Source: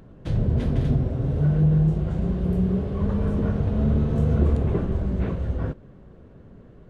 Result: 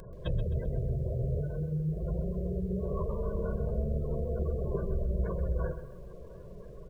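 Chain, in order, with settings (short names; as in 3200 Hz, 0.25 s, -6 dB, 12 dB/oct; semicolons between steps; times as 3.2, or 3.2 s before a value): bell 96 Hz -5.5 dB 0.58 oct, from 1.5 s -12.5 dB; compressor 6:1, threshold -31 dBFS, peak gain reduction 13.5 dB; notches 50/100/150/200/250/300/350 Hz; spectral gate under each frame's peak -25 dB strong; high shelf 3200 Hz +12 dB; comb 1.9 ms, depth 95%; lo-fi delay 0.13 s, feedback 35%, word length 10-bit, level -11 dB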